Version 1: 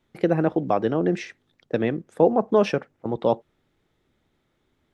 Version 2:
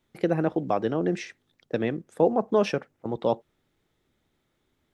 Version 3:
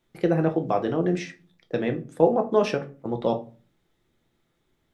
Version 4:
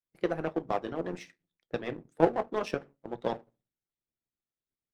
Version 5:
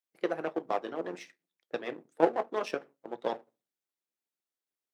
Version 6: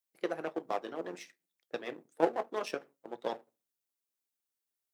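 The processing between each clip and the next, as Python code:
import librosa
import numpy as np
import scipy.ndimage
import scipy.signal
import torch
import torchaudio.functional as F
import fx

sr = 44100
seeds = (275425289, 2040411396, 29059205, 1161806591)

y1 = fx.high_shelf(x, sr, hz=4900.0, db=6.5)
y1 = y1 * librosa.db_to_amplitude(-3.5)
y2 = fx.room_shoebox(y1, sr, seeds[0], volume_m3=190.0, walls='furnished', distance_m=0.78)
y3 = fx.power_curve(y2, sr, exponent=1.4)
y3 = fx.hpss(y3, sr, part='harmonic', gain_db=-12)
y4 = scipy.signal.sosfilt(scipy.signal.butter(2, 310.0, 'highpass', fs=sr, output='sos'), y3)
y5 = fx.high_shelf(y4, sr, hz=5700.0, db=9.5)
y5 = y5 * librosa.db_to_amplitude(-3.5)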